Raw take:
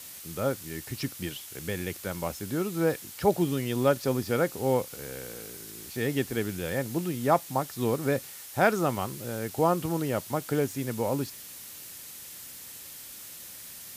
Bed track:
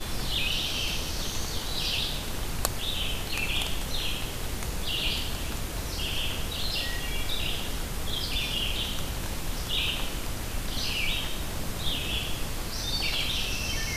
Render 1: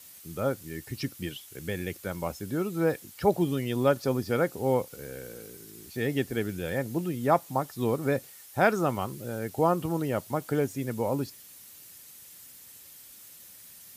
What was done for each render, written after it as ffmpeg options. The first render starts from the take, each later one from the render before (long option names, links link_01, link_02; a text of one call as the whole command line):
ffmpeg -i in.wav -af "afftdn=noise_reduction=8:noise_floor=-44" out.wav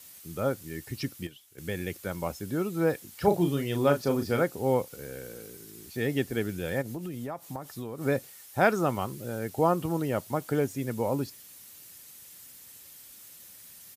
ffmpeg -i in.wav -filter_complex "[0:a]asplit=3[link_01][link_02][link_03];[link_01]afade=type=out:start_time=3.12:duration=0.02[link_04];[link_02]asplit=2[link_05][link_06];[link_06]adelay=35,volume=-7dB[link_07];[link_05][link_07]amix=inputs=2:normalize=0,afade=type=in:start_time=3.12:duration=0.02,afade=type=out:start_time=4.42:duration=0.02[link_08];[link_03]afade=type=in:start_time=4.42:duration=0.02[link_09];[link_04][link_08][link_09]amix=inputs=3:normalize=0,asplit=3[link_10][link_11][link_12];[link_10]afade=type=out:start_time=6.81:duration=0.02[link_13];[link_11]acompressor=threshold=-32dB:ratio=10:attack=3.2:release=140:knee=1:detection=peak,afade=type=in:start_time=6.81:duration=0.02,afade=type=out:start_time=8:duration=0.02[link_14];[link_12]afade=type=in:start_time=8:duration=0.02[link_15];[link_13][link_14][link_15]amix=inputs=3:normalize=0,asplit=3[link_16][link_17][link_18];[link_16]atrim=end=1.27,asetpts=PTS-STARTPTS,afade=type=out:start_time=0.85:duration=0.42:curve=log:silence=0.281838[link_19];[link_17]atrim=start=1.27:end=1.58,asetpts=PTS-STARTPTS,volume=-11dB[link_20];[link_18]atrim=start=1.58,asetpts=PTS-STARTPTS,afade=type=in:duration=0.42:curve=log:silence=0.281838[link_21];[link_19][link_20][link_21]concat=n=3:v=0:a=1" out.wav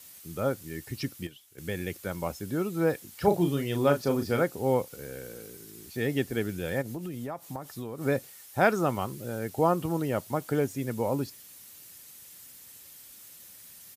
ffmpeg -i in.wav -af anull out.wav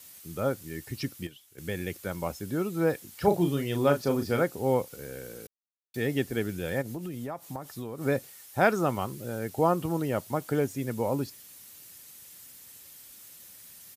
ffmpeg -i in.wav -filter_complex "[0:a]asplit=3[link_01][link_02][link_03];[link_01]atrim=end=5.47,asetpts=PTS-STARTPTS,afade=type=out:start_time=5.466:duration=0.004:curve=hsin[link_04];[link_02]atrim=start=5.47:end=5.94,asetpts=PTS-STARTPTS,volume=0[link_05];[link_03]atrim=start=5.94,asetpts=PTS-STARTPTS,afade=type=in:duration=0.004:curve=hsin[link_06];[link_04][link_05][link_06]concat=n=3:v=0:a=1" out.wav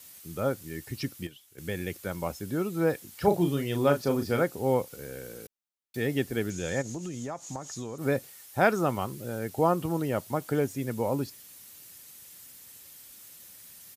ffmpeg -i in.wav -filter_complex "[0:a]asettb=1/sr,asplit=3[link_01][link_02][link_03];[link_01]atrim=end=6.504[link_04];[link_02]atrim=start=6.5:end=7.98,asetpts=PTS-STARTPTS,afade=type=in:duration=0.004:curve=qsin,afade=type=out:start_time=1.476:duration=0.004:curve=qsin,lowpass=frequency=6700:width_type=q:width=7.9[link_05];[link_03]atrim=start=7.976[link_06];[link_04][link_05]acrossfade=duration=0.004:curve1=hsin:curve2=qsin[link_07];[link_07][link_06]acrossfade=duration=0.004:curve1=qsin:curve2=hsin" out.wav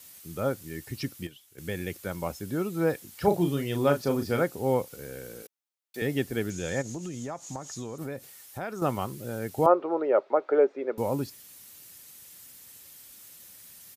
ffmpeg -i in.wav -filter_complex "[0:a]asettb=1/sr,asplit=3[link_01][link_02][link_03];[link_01]atrim=end=5.424[link_04];[link_02]atrim=start=5.42:end=6.02,asetpts=PTS-STARTPTS,afade=type=in:duration=0.004:curve=qsin,afade=type=out:start_time=0.596:duration=0.004:curve=qsin,highpass=330[link_05];[link_03]atrim=start=6.016[link_06];[link_04][link_05]acrossfade=duration=0.004:curve1=hsin:curve2=qsin[link_07];[link_07][link_06]acrossfade=duration=0.004:curve1=qsin:curve2=hsin,asettb=1/sr,asplit=3[link_08][link_09][link_10];[link_08]atrim=end=8.034[link_11];[link_09]atrim=start=8.03:end=8.82,asetpts=PTS-STARTPTS,afade=type=in:duration=0.004:curve=qsin,afade=type=out:start_time=0.786:duration=0.004:curve=qsin,acompressor=threshold=-35dB:ratio=3:attack=3.2:release=140:knee=1:detection=peak[link_12];[link_10]atrim=start=8.816[link_13];[link_11][link_12]acrossfade=duration=0.004:curve1=hsin:curve2=qsin[link_14];[link_14][link_13]acrossfade=duration=0.004:curve1=qsin:curve2=hsin,asettb=1/sr,asplit=3[link_15][link_16][link_17];[link_15]atrim=end=9.664[link_18];[link_16]atrim=start=9.66:end=10.98,asetpts=PTS-STARTPTS,afade=type=in:duration=0.004:curve=qsin,afade=type=out:start_time=1.316:duration=0.004:curve=qsin,highpass=frequency=330:width=0.5412,highpass=frequency=330:width=1.3066,equalizer=frequency=400:width_type=q:width=4:gain=9,equalizer=frequency=570:width_type=q:width=4:gain=10,equalizer=frequency=830:width_type=q:width=4:gain=4,equalizer=frequency=1300:width_type=q:width=4:gain=6,equalizer=frequency=1800:width_type=q:width=4:gain=-3,equalizer=frequency=3000:width_type=q:width=4:gain=-10,lowpass=frequency=3000:width=0.5412,lowpass=frequency=3000:width=1.3066[link_19];[link_17]atrim=start=10.976[link_20];[link_18][link_19]acrossfade=duration=0.004:curve1=hsin:curve2=qsin[link_21];[link_21][link_20]acrossfade=duration=0.004:curve1=qsin:curve2=hsin" out.wav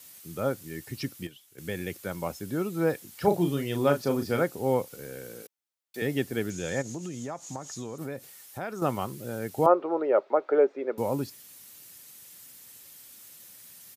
ffmpeg -i in.wav -af "highpass=93" out.wav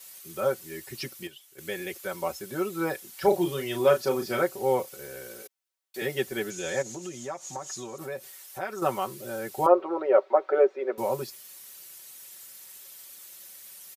ffmpeg -i in.wav -af "equalizer=frequency=180:width_type=o:width=1:gain=-13.5,aecho=1:1:5.3:0.98" out.wav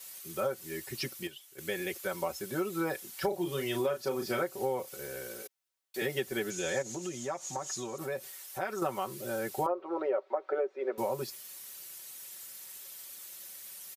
ffmpeg -i in.wav -af "acompressor=threshold=-28dB:ratio=8" out.wav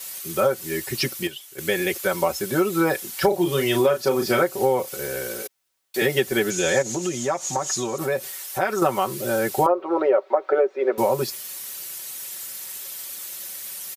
ffmpeg -i in.wav -af "volume=12dB" out.wav